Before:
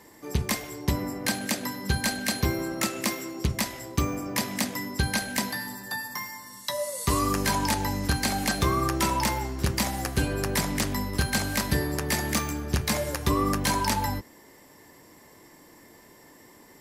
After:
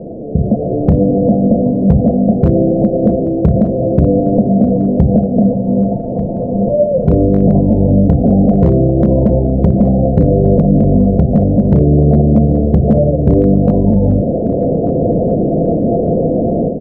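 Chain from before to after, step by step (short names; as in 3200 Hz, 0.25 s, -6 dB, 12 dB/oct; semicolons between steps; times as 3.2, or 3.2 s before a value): delta modulation 16 kbps, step -27 dBFS; notches 60/120/180/240/300/360/420/480 Hz; AGC gain up to 13.5 dB; rippled Chebyshev low-pass 710 Hz, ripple 9 dB; hard clip -12 dBFS, distortion -20 dB; 11.8–12.47 doubler 13 ms -4 dB; on a send: feedback echo 1.191 s, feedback 43%, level -17.5 dB; on the sum: maximiser +16 dB; gain -1 dB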